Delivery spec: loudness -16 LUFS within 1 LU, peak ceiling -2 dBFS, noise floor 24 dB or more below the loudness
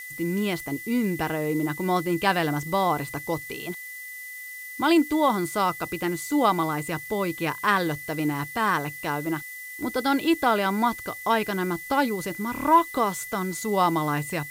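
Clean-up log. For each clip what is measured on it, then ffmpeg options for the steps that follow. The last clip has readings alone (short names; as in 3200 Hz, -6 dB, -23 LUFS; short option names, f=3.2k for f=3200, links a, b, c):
steady tone 2000 Hz; tone level -37 dBFS; noise floor -39 dBFS; noise floor target -50 dBFS; loudness -25.5 LUFS; peak -8.0 dBFS; loudness target -16.0 LUFS
-> -af "bandreject=f=2k:w=30"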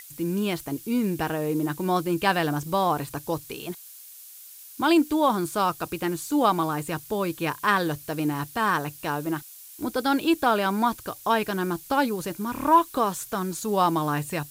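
steady tone none; noise floor -46 dBFS; noise floor target -50 dBFS
-> -af "afftdn=nr=6:nf=-46"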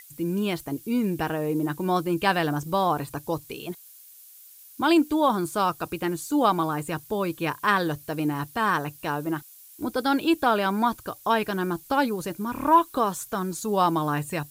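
noise floor -49 dBFS; noise floor target -50 dBFS
-> -af "afftdn=nr=6:nf=-49"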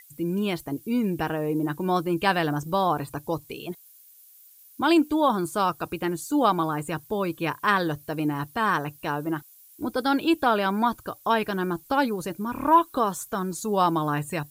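noise floor -53 dBFS; loudness -25.5 LUFS; peak -8.0 dBFS; loudness target -16.0 LUFS
-> -af "volume=9.5dB,alimiter=limit=-2dB:level=0:latency=1"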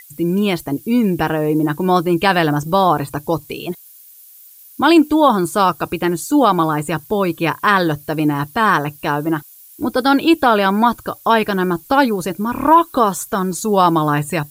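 loudness -16.5 LUFS; peak -2.0 dBFS; noise floor -43 dBFS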